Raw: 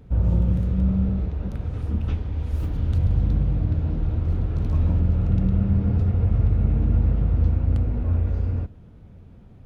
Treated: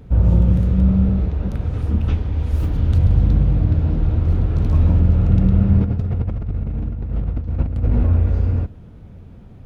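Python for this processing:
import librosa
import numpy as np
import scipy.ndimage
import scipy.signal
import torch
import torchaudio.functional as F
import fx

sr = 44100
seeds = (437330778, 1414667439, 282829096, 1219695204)

y = fx.over_compress(x, sr, threshold_db=-23.0, ratio=-0.5, at=(5.79, 8.06), fade=0.02)
y = y * librosa.db_to_amplitude(6.0)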